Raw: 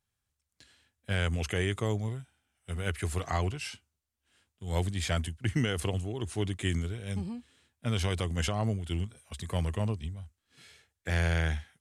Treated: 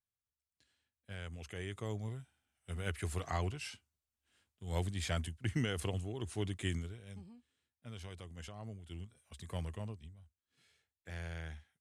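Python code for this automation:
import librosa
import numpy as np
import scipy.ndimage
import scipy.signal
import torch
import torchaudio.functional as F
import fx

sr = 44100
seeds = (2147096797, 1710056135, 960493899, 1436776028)

y = fx.gain(x, sr, db=fx.line((1.4, -16.0), (2.2, -6.0), (6.68, -6.0), (7.27, -18.0), (8.54, -18.0), (9.55, -9.0), (10.14, -16.0)))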